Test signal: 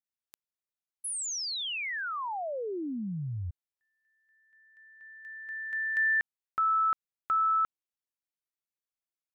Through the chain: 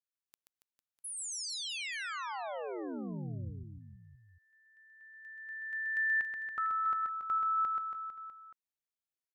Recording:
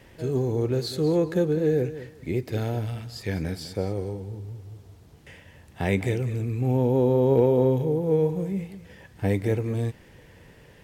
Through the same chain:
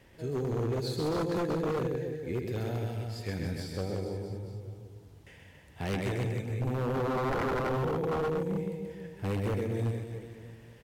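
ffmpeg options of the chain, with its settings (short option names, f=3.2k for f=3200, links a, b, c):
-af "aecho=1:1:130|279.5|451.4|649.1|876.5:0.631|0.398|0.251|0.158|0.1,aeval=exprs='0.126*(abs(mod(val(0)/0.126+3,4)-2)-1)':c=same,volume=-7dB"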